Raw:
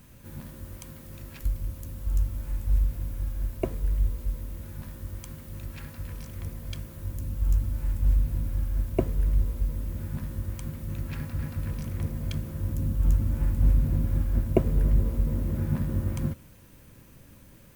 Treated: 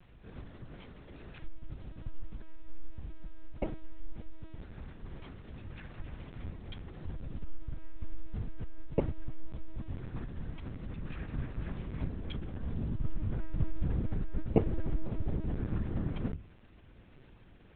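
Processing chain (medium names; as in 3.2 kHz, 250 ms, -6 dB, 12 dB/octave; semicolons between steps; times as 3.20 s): hum notches 50/100/150/200/250 Hz; LPC vocoder at 8 kHz pitch kept; trim -3.5 dB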